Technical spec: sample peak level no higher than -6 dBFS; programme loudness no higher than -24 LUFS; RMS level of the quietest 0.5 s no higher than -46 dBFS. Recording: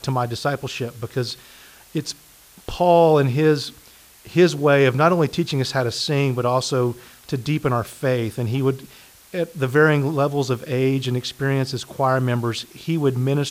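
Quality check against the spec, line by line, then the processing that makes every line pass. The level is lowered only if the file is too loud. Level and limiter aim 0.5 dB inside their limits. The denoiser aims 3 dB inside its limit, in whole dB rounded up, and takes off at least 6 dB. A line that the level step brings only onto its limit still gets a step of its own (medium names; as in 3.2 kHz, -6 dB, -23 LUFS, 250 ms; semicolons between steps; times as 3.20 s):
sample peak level -4.0 dBFS: fail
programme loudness -20.5 LUFS: fail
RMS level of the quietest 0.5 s -49 dBFS: pass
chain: trim -4 dB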